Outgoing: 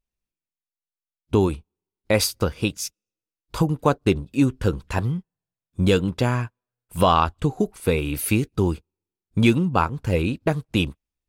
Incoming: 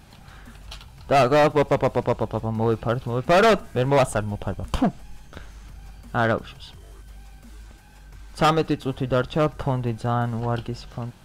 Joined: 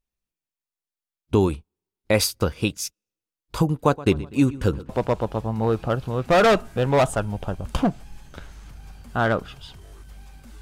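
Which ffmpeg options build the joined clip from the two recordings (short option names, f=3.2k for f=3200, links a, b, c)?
-filter_complex "[0:a]asettb=1/sr,asplit=3[a][b][c];[a]atrim=end=3.744[d];[b]atrim=start=3.74:end=4.89,asetpts=PTS-STARTPTS,afade=t=in:d=0.004:c=qsin,afade=t=out:st=1.146:d=0.004:c=qsin,asplit=2[e][f];[f]adelay=123,lowpass=f=4.1k:p=1,volume=-18dB,asplit=2[g][h];[h]adelay=123,lowpass=f=4.1k:p=1,volume=0.53,asplit=2[i][j];[j]adelay=123,lowpass=f=4.1k:p=1,volume=0.53,asplit=2[k][l];[l]adelay=123,lowpass=f=4.1k:p=1,volume=0.53[m];[e][g][i][k][m]amix=inputs=5:normalize=0,atrim=end_sample=50715[n];[c]atrim=start=4.886[o];[d][n]acrossfade=d=0.004:c1=hsin:c2=qsin[p];[p][o]acrossfade=d=0.004:c1=qsin:c2=hsin,apad=whole_dur=10.61,atrim=end=10.61,atrim=end=4.892[q];[1:a]atrim=start=1.878:end=7.6[r];[q][r]acrossfade=d=0.004:c1=hsin:c2=hsin"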